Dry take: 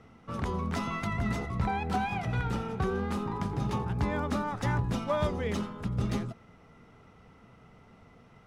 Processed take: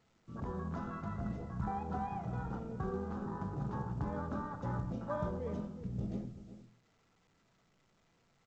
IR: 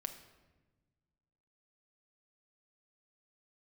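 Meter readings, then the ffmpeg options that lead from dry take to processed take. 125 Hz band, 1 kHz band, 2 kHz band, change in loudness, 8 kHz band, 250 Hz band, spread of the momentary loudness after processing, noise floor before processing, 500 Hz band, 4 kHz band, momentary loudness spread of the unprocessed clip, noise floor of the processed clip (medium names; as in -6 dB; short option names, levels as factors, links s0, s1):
-8.0 dB, -8.0 dB, -14.5 dB, -8.0 dB, under -15 dB, -7.0 dB, 5 LU, -57 dBFS, -8.0 dB, under -20 dB, 4 LU, -72 dBFS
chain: -filter_complex "[0:a]afwtdn=0.0224,asplit=2[s0][s1];[s1]adelay=367.3,volume=0.224,highshelf=f=4000:g=-8.27[s2];[s0][s2]amix=inputs=2:normalize=0[s3];[1:a]atrim=start_sample=2205,atrim=end_sample=6615[s4];[s3][s4]afir=irnorm=-1:irlink=0,volume=0.531" -ar 16000 -c:a pcm_alaw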